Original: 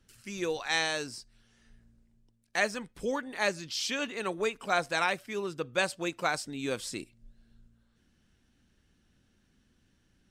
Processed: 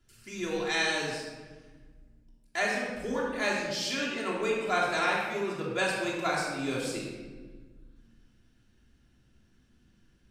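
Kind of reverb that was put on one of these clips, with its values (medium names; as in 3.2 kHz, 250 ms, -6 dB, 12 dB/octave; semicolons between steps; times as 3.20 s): simulated room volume 1200 m³, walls mixed, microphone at 3.1 m; trim -4.5 dB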